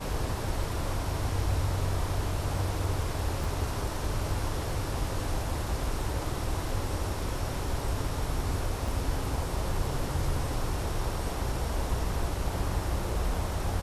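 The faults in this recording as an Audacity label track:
3.440000	3.440000	dropout 2.6 ms
8.880000	8.880000	dropout 3.6 ms

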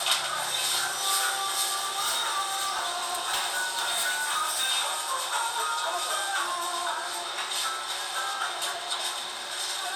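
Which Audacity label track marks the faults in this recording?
1.740000	4.710000	clipped -23 dBFS

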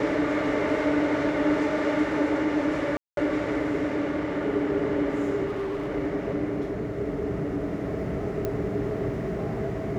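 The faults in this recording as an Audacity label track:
2.970000	3.170000	dropout 202 ms
5.450000	5.880000	clipped -26.5 dBFS
8.450000	8.450000	pop -16 dBFS

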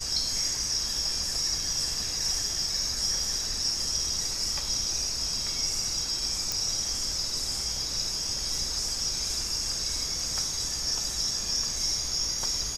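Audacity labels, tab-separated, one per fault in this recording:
6.520000	6.520000	pop

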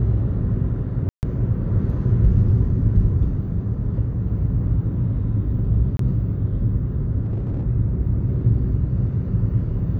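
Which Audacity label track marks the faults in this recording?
1.090000	1.230000	dropout 139 ms
5.970000	5.990000	dropout 23 ms
7.210000	7.640000	clipped -20 dBFS

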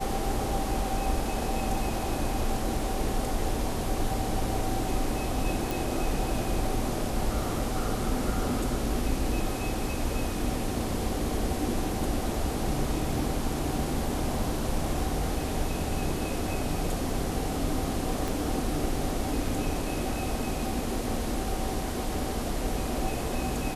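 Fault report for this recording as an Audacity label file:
5.710000	5.710000	pop
18.280000	18.280000	pop

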